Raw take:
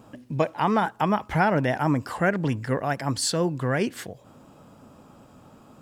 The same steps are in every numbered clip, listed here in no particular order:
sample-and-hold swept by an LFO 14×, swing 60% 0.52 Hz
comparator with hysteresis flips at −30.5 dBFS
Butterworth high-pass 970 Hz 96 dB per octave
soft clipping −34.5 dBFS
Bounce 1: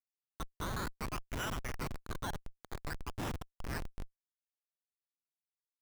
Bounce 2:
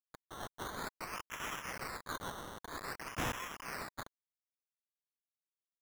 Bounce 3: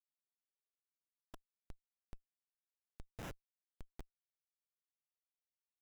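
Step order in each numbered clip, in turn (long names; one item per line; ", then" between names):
Butterworth high-pass, then sample-and-hold swept by an LFO, then comparator with hysteresis, then soft clipping
comparator with hysteresis, then soft clipping, then Butterworth high-pass, then sample-and-hold swept by an LFO
soft clipping, then Butterworth high-pass, then comparator with hysteresis, then sample-and-hold swept by an LFO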